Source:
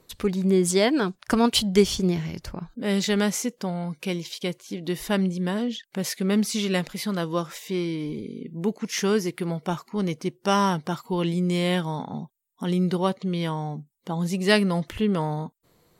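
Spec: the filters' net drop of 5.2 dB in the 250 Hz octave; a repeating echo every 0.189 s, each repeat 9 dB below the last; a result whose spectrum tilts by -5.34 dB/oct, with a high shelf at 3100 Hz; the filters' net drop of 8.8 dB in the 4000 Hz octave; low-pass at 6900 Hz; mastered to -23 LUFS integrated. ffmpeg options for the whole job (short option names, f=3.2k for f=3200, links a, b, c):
-af "lowpass=6.9k,equalizer=f=250:t=o:g=-8,highshelf=f=3.1k:g=-6,equalizer=f=4k:t=o:g=-7,aecho=1:1:189|378|567|756:0.355|0.124|0.0435|0.0152,volume=6dB"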